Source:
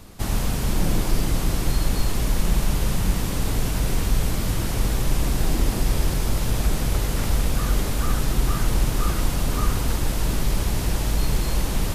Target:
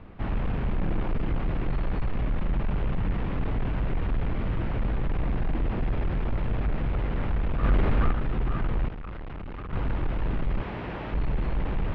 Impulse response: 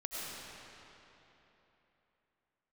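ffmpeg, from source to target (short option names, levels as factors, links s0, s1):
-filter_complex "[0:a]asettb=1/sr,asplit=3[s0][s1][s2];[s0]atrim=end=10.614[s3];[s1]atrim=start=10.61:end=11.13,asetpts=PTS-STARTPTS,afade=t=in:d=0.004:c=qsin,afade=t=out:st=0.516:d=0.004:c=qsin,highpass=f=280:p=1[s4];[s2]atrim=start=11.126[s5];[s3][s4]acrossfade=d=0.004:c1=hsin:c2=qsin[s6];[s6][s5]acrossfade=d=0.004:c1=qsin:c2=hsin,asoftclip=type=tanh:threshold=0.106,asettb=1/sr,asplit=3[s7][s8][s9];[s7]atrim=end=7.634[s10];[s8]atrim=start=7.63:end=8.11,asetpts=PTS-STARTPTS,afade=t=in:d=0.004:c=qsin,afade=t=out:st=0.476:d=0.004:c=qsin,acontrast=37[s11];[s9]atrim=start=8.106[s12];[s10][s11]acrossfade=d=0.004:c1=hsin:c2=qsin[s13];[s13][s12]acrossfade=d=0.004:c1=qsin:c2=hsin,asettb=1/sr,asplit=3[s14][s15][s16];[s14]atrim=end=8.884[s17];[s15]atrim=start=8.88:end=9.73,asetpts=PTS-STARTPTS,afade=t=in:d=0.004:c=qsin,afade=t=out:st=0.846:d=0.004:c=qsin,asoftclip=type=hard:threshold=0.0211[s18];[s16]atrim=start=9.726[s19];[s17][s18]acrossfade=d=0.004:c1=hsin:c2=qsin[s20];[s20][s19]acrossfade=d=0.004:c1=qsin:c2=hsin,lowpass=f=2700:w=0.5412,lowpass=f=2700:w=1.3066,aemphasis=mode=reproduction:type=50fm,volume=0.841"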